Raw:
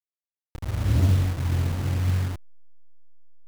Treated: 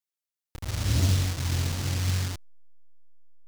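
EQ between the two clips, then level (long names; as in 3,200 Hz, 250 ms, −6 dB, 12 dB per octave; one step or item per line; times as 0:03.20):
dynamic equaliser 5,500 Hz, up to +7 dB, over −55 dBFS, Q 0.81
high-shelf EQ 2,000 Hz +8 dB
−3.5 dB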